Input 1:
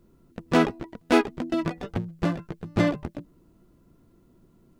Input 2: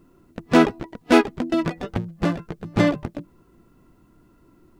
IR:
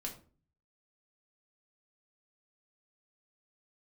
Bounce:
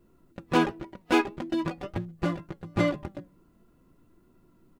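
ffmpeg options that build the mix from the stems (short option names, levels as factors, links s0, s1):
-filter_complex "[0:a]equalizer=f=5700:w=1.5:g=-5,volume=1,asplit=2[s0][s1];[s1]volume=0.126[s2];[1:a]equalizer=f=73:w=0.35:g=-13,volume=-1,adelay=4.6,volume=0.596[s3];[2:a]atrim=start_sample=2205[s4];[s2][s4]afir=irnorm=-1:irlink=0[s5];[s0][s3][s5]amix=inputs=3:normalize=0,flanger=delay=2.5:depth=3:regen=87:speed=0.46:shape=triangular"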